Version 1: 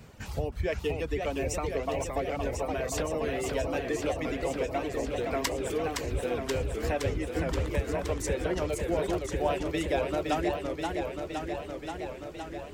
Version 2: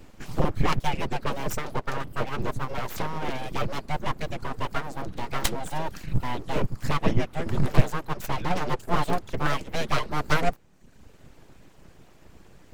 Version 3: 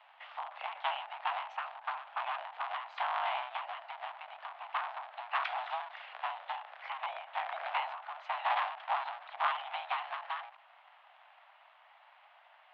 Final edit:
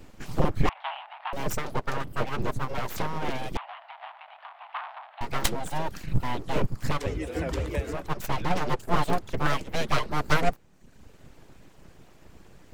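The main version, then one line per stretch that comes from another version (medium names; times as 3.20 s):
2
0.69–1.33 s: from 3
3.57–5.21 s: from 3
6.99–7.99 s: from 1, crossfade 0.24 s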